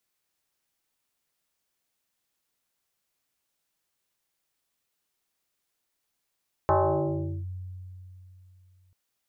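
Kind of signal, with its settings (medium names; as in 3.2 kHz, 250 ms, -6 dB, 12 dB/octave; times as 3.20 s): FM tone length 2.24 s, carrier 92 Hz, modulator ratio 2.59, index 4.4, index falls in 0.76 s linear, decay 3.16 s, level -17.5 dB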